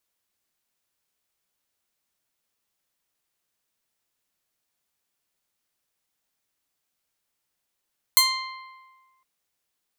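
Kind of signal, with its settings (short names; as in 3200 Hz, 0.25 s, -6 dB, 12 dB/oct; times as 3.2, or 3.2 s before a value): plucked string C6, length 1.06 s, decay 1.47 s, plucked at 0.4, bright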